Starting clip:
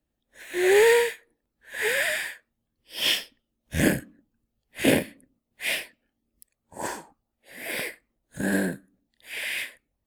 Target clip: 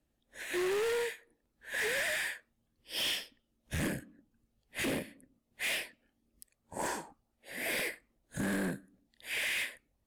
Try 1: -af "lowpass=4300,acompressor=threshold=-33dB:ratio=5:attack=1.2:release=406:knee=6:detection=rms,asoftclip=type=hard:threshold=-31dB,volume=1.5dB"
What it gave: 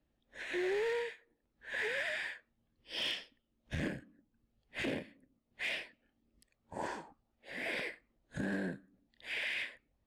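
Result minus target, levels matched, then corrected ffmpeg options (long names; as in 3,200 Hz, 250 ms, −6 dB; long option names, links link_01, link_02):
8,000 Hz band −11.5 dB; downward compressor: peak gain reduction +5.5 dB
-af "lowpass=14000,acompressor=threshold=-26dB:ratio=5:attack=1.2:release=406:knee=6:detection=rms,asoftclip=type=hard:threshold=-31dB,volume=1.5dB"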